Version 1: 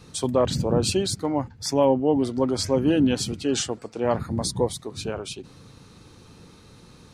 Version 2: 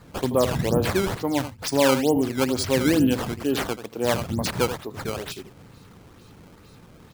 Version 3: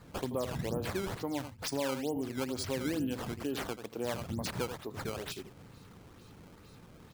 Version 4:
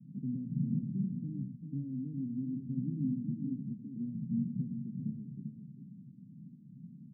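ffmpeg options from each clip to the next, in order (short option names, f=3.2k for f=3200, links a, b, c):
-af "aecho=1:1:82:0.282,acrusher=samples=14:mix=1:aa=0.000001:lfo=1:lforange=22.4:lforate=2.2"
-af "acompressor=threshold=-29dB:ratio=2.5,volume=-5.5dB"
-af "asuperpass=centerf=180:order=8:qfactor=1.5,aecho=1:1:395:0.422,volume=7dB"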